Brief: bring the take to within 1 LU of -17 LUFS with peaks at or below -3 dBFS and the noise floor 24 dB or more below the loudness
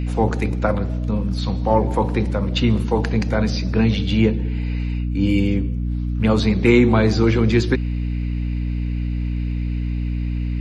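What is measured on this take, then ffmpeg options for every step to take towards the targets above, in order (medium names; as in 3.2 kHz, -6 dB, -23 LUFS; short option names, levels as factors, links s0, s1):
hum 60 Hz; highest harmonic 300 Hz; hum level -20 dBFS; loudness -20.5 LUFS; peak level -2.0 dBFS; loudness target -17.0 LUFS
-> -af "bandreject=f=60:t=h:w=6,bandreject=f=120:t=h:w=6,bandreject=f=180:t=h:w=6,bandreject=f=240:t=h:w=6,bandreject=f=300:t=h:w=6"
-af "volume=1.5,alimiter=limit=0.708:level=0:latency=1"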